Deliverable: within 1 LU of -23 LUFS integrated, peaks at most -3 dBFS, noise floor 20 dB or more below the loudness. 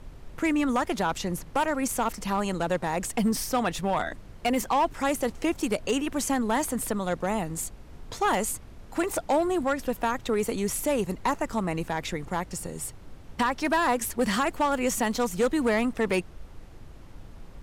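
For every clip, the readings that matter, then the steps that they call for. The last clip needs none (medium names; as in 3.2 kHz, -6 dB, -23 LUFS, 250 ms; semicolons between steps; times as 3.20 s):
clipped samples 1.1%; clipping level -18.0 dBFS; noise floor -46 dBFS; noise floor target -48 dBFS; loudness -27.5 LUFS; peak level -18.0 dBFS; loudness target -23.0 LUFS
-> clip repair -18 dBFS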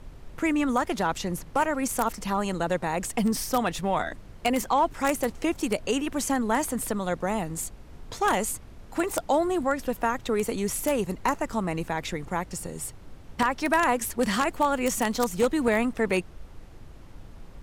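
clipped samples 0.0%; noise floor -46 dBFS; noise floor target -47 dBFS
-> noise print and reduce 6 dB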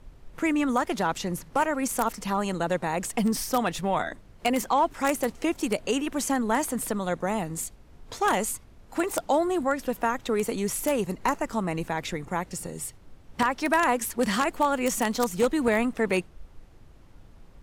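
noise floor -52 dBFS; loudness -27.0 LUFS; peak level -9.0 dBFS; loudness target -23.0 LUFS
-> trim +4 dB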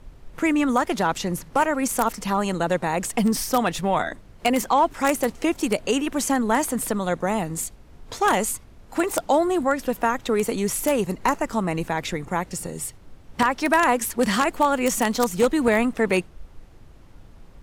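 loudness -23.0 LUFS; peak level -5.0 dBFS; noise floor -48 dBFS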